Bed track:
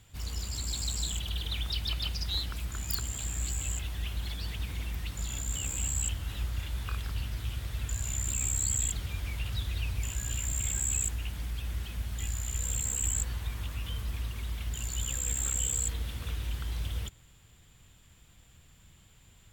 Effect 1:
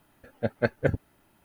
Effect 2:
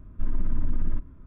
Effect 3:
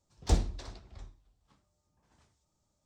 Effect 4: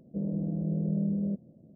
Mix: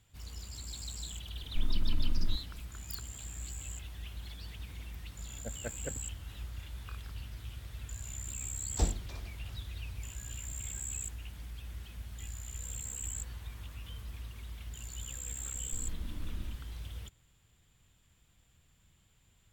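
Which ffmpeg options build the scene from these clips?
-filter_complex "[2:a]asplit=2[a][b];[0:a]volume=-9dB[c];[b]flanger=delay=22.5:depth=5:speed=2.7[d];[a]atrim=end=1.26,asetpts=PTS-STARTPTS,volume=-5dB,afade=t=in:d=0.004:c=hsin,afade=t=out:st=1.256:d=0.004:c=hsin,adelay=1360[e];[1:a]atrim=end=1.44,asetpts=PTS-STARTPTS,volume=-17dB,afade=t=in:d=0.004:c=hsin,afade=t=out:st=1.436:d=0.004:c=hsin,adelay=5020[f];[3:a]atrim=end=2.85,asetpts=PTS-STARTPTS,volume=-4dB,afade=t=in:d=0.004:c=hsin,afade=t=out:st=2.846:d=0.004:c=hsin,adelay=374850S[g];[d]atrim=end=1.26,asetpts=PTS-STARTPTS,volume=-8dB,afade=t=in:d=0.004:c=hsin,afade=t=out:st=1.256:d=0.004:c=hsin,adelay=15530[h];[c][e][f][g][h]amix=inputs=5:normalize=0"

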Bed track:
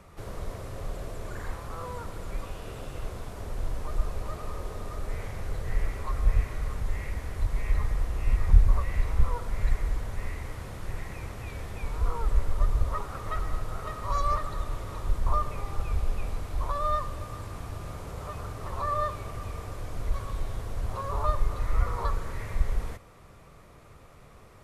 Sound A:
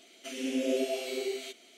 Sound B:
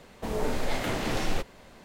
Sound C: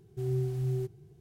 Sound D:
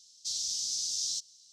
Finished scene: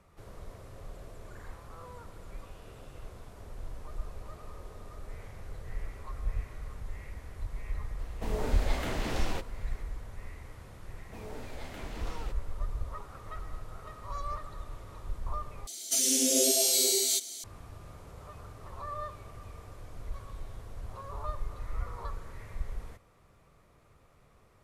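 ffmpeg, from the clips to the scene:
-filter_complex "[2:a]asplit=2[a][b];[0:a]volume=-10dB[c];[1:a]aexciter=amount=9.8:drive=7:freq=4k[d];[c]asplit=2[e][f];[e]atrim=end=15.674[g];[d]atrim=end=1.77,asetpts=PTS-STARTPTS,volume=-0.5dB[h];[f]atrim=start=17.436[i];[a]atrim=end=1.84,asetpts=PTS-STARTPTS,volume=-5dB,afade=t=in:d=0.004:c=hsin,afade=t=out:st=1.836:d=0.004:c=hsin,adelay=7990[j];[b]atrim=end=1.84,asetpts=PTS-STARTPTS,volume=-14.5dB,afade=t=in:d=0.004:c=hsin,afade=t=out:st=1.836:d=0.004:c=hsin,adelay=480690S[k];[g][h]acrossfade=d=0.004:c1=hsin:c2=hsin[l];[l][i]acrossfade=d=0.004:c1=hsin:c2=hsin[m];[m][j][k]amix=inputs=3:normalize=0"

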